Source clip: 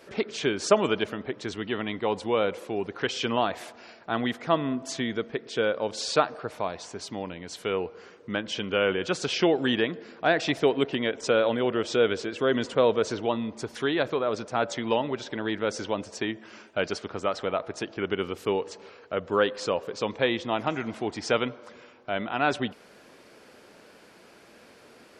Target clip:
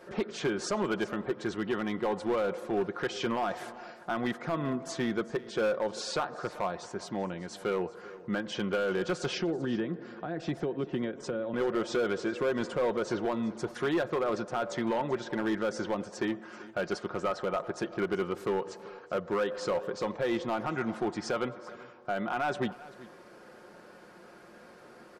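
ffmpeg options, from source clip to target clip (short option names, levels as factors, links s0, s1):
-filter_complex "[0:a]highshelf=f=1900:t=q:w=1.5:g=-6,aecho=1:1:5.6:0.45,alimiter=limit=0.126:level=0:latency=1:release=139,asettb=1/sr,asplit=3[s0][s1][s2];[s0]atrim=end=9.384[s3];[s1]atrim=start=9.38:end=11.54,asetpts=PTS-STARTPTS,afade=t=in:d=0.004:c=qsin,afade=t=out:st=2.156:d=0.004:c=qsin,acrossover=split=380[s4][s5];[s5]acompressor=threshold=0.00891:ratio=4[s6];[s4][s6]amix=inputs=2:normalize=0[s7];[s2]atrim=start=11.536[s8];[s3][s7]acrossfade=d=0.004:c1=hsin:c2=qsin[s9];[s9][s8]acrossfade=d=0.004:c1=qsin:c2=hsin,volume=15,asoftclip=hard,volume=0.0668,aecho=1:1:387:0.112"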